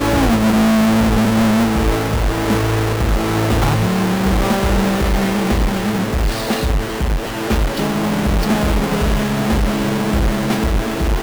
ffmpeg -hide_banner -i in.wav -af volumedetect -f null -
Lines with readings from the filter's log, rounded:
mean_volume: -15.7 dB
max_volume: -10.9 dB